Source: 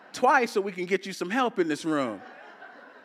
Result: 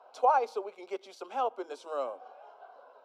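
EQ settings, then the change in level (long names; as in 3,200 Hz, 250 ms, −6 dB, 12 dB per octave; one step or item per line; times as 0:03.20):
Butterworth high-pass 300 Hz 48 dB per octave
low-pass filter 1,200 Hz 6 dB per octave
phaser with its sweep stopped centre 760 Hz, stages 4
0.0 dB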